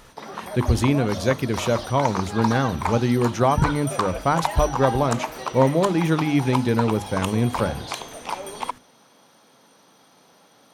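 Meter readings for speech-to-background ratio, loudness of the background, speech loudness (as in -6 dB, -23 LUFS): 7.5 dB, -30.0 LUFS, -22.5 LUFS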